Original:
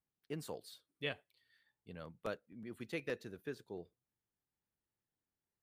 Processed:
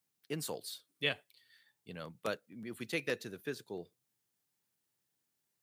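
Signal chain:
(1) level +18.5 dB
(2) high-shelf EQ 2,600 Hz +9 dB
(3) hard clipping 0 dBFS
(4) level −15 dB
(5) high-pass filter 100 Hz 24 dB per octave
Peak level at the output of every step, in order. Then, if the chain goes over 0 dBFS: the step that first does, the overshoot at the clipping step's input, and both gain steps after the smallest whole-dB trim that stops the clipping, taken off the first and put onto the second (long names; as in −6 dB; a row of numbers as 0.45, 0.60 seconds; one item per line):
−5.0, −1.5, −1.5, −16.5, −17.5 dBFS
no step passes full scale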